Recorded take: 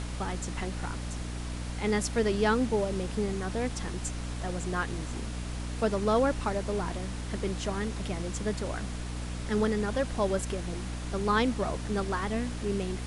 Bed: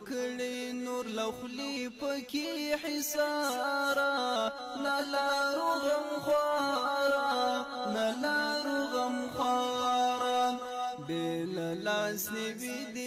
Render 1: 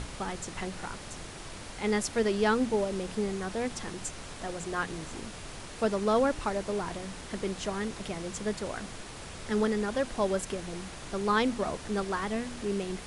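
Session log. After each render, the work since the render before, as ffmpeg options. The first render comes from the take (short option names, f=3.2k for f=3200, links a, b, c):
-af "bandreject=f=60:t=h:w=4,bandreject=f=120:t=h:w=4,bandreject=f=180:t=h:w=4,bandreject=f=240:t=h:w=4,bandreject=f=300:t=h:w=4"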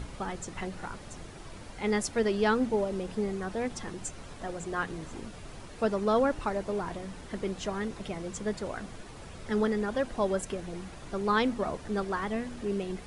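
-af "afftdn=nr=8:nf=-44"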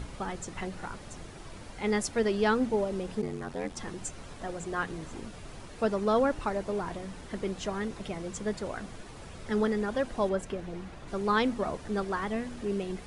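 -filter_complex "[0:a]asplit=3[a][b][c];[a]afade=t=out:st=3.21:d=0.02[d];[b]aeval=exprs='val(0)*sin(2*PI*44*n/s)':c=same,afade=t=in:st=3.21:d=0.02,afade=t=out:st=3.75:d=0.02[e];[c]afade=t=in:st=3.75:d=0.02[f];[d][e][f]amix=inputs=3:normalize=0,asettb=1/sr,asplit=3[g][h][i];[g]atrim=end=10.294[j];[h]atrim=start=10.29:end=11.08,asetpts=PTS-STARTPTS,afade=t=in:d=0.004:c=qsin,afade=t=out:st=0.786:d=0.004:c=qsin,highshelf=f=5.5k:g=-11[k];[i]atrim=start=11.076[l];[j][k]acrossfade=d=0.004:c1=hsin:c2=qsin[m];[m][l]acrossfade=d=0.004:c1=qsin:c2=hsin"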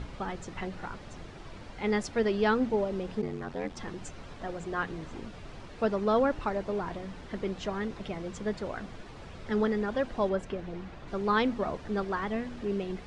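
-af "lowpass=4.8k"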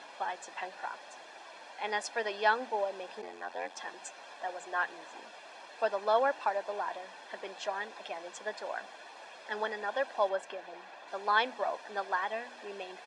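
-af "highpass=f=430:w=0.5412,highpass=f=430:w=1.3066,aecho=1:1:1.2:0.58"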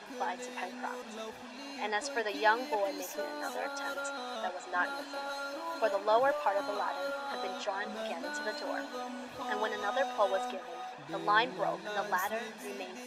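-filter_complex "[1:a]volume=-9dB[a];[0:a][a]amix=inputs=2:normalize=0"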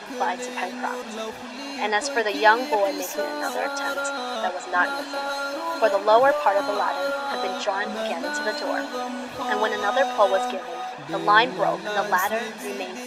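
-af "volume=10.5dB"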